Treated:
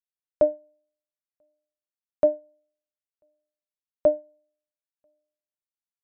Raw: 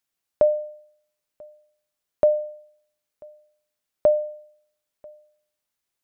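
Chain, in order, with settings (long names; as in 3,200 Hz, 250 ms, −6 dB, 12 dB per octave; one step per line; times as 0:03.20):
sub-octave generator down 1 octave, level −1 dB
expander for the loud parts 2.5 to 1, over −29 dBFS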